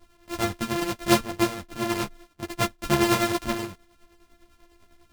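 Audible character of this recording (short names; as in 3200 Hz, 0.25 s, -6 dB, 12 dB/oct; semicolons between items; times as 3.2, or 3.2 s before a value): a buzz of ramps at a fixed pitch in blocks of 128 samples; tremolo triangle 10 Hz, depth 70%; a shimmering, thickened sound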